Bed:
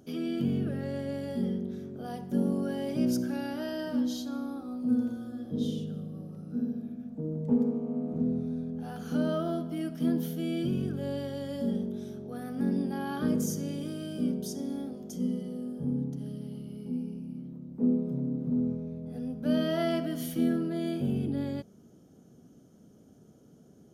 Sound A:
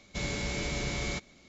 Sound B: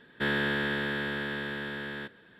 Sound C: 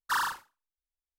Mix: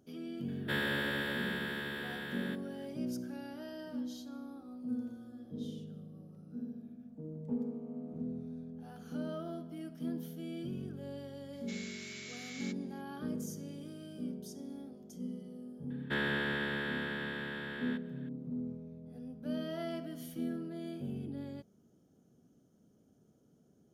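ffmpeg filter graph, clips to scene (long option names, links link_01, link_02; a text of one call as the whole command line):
ffmpeg -i bed.wav -i cue0.wav -i cue1.wav -filter_complex "[2:a]asplit=2[link_01][link_02];[0:a]volume=-10.5dB[link_03];[link_01]aemphasis=mode=production:type=50fm[link_04];[1:a]highpass=frequency=1500:width=0.5412,highpass=frequency=1500:width=1.3066[link_05];[link_04]atrim=end=2.39,asetpts=PTS-STARTPTS,volume=-6dB,afade=type=in:duration=0.004:curve=hsin,afade=type=out:start_time=2.386:duration=0.004:curve=hsin,adelay=480[link_06];[link_05]atrim=end=1.48,asetpts=PTS-STARTPTS,volume=-9.5dB,afade=type=in:duration=0.004:curve=hsin,afade=type=out:start_time=1.476:duration=0.004:curve=hsin,adelay=11530[link_07];[link_02]atrim=end=2.39,asetpts=PTS-STARTPTS,volume=-5dB,afade=type=in:duration=0.004:curve=hsin,afade=type=out:start_time=2.386:duration=0.004:curve=hsin,adelay=15900[link_08];[link_03][link_06][link_07][link_08]amix=inputs=4:normalize=0" out.wav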